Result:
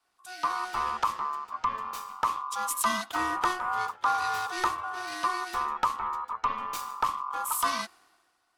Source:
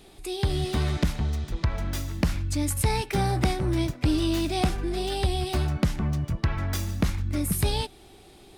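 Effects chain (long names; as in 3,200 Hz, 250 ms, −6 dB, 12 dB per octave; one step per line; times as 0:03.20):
ring modulation 1,100 Hz
multiband upward and downward expander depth 70%
level −2 dB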